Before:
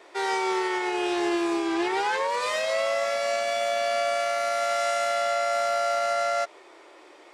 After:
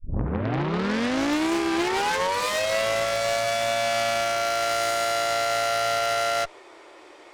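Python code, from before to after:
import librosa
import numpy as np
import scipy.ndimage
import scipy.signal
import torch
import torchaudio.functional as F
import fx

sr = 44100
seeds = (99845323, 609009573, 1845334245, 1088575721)

y = fx.tape_start_head(x, sr, length_s=1.54)
y = fx.cheby_harmonics(y, sr, harmonics=(4, 5, 6), levels_db=(-11, -23, -9), full_scale_db=-16.5)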